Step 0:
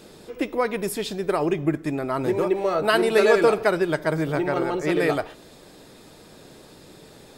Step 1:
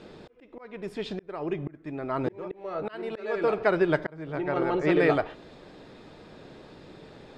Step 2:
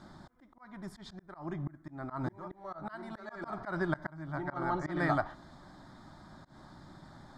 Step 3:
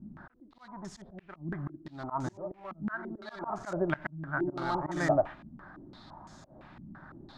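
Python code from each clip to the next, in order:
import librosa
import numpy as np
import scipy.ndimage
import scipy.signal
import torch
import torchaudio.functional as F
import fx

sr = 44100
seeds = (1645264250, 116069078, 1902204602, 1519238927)

y1 = scipy.signal.sosfilt(scipy.signal.butter(2, 3200.0, 'lowpass', fs=sr, output='sos'), x)
y1 = fx.auto_swell(y1, sr, attack_ms=714.0)
y2 = fx.fixed_phaser(y1, sr, hz=1100.0, stages=4)
y2 = fx.auto_swell(y2, sr, attack_ms=137.0)
y3 = fx.cvsd(y2, sr, bps=64000)
y3 = fx.filter_held_lowpass(y3, sr, hz=5.9, low_hz=220.0, high_hz=6600.0)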